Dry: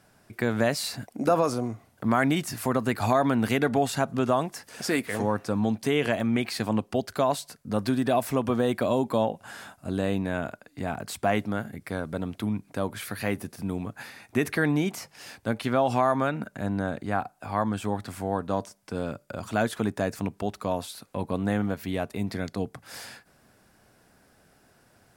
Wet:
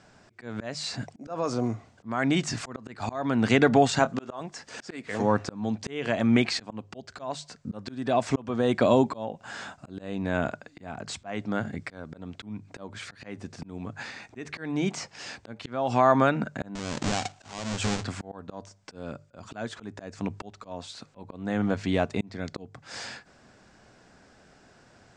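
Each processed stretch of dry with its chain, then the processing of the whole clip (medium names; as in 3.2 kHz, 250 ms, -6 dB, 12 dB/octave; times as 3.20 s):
3.99–4.41 s: high-pass 300 Hz 6 dB/octave + doubling 26 ms -12.5 dB
16.75–18.04 s: square wave that keeps the level + peaking EQ 11 kHz +9.5 dB 2.4 oct + compression, threshold -27 dBFS
whole clip: steep low-pass 7.8 kHz 48 dB/octave; hum notches 50/100/150 Hz; slow attack 463 ms; trim +4.5 dB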